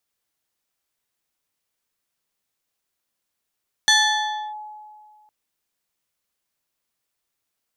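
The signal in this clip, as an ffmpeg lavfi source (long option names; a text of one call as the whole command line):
ffmpeg -f lavfi -i "aevalsrc='0.282*pow(10,-3*t/1.99)*sin(2*PI*849*t+2*clip(1-t/0.66,0,1)*sin(2*PI*3.07*849*t))':duration=1.41:sample_rate=44100" out.wav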